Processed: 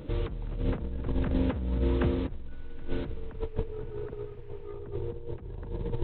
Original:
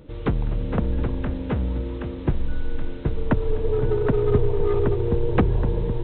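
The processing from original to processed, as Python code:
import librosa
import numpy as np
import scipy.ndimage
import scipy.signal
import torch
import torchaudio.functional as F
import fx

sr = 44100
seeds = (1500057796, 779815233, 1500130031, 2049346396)

y = fx.over_compress(x, sr, threshold_db=-27.0, ratio=-0.5)
y = fx.dmg_noise_band(y, sr, seeds[0], low_hz=540.0, high_hz=2900.0, level_db=-65.0, at=(2.5, 4.66), fade=0.02)
y = y * 10.0 ** (-3.0 / 20.0)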